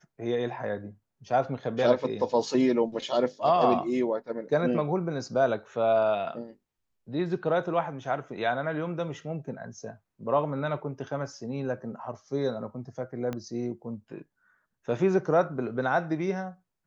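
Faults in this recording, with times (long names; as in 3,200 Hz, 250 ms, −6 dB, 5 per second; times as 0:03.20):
0:13.33: click −20 dBFS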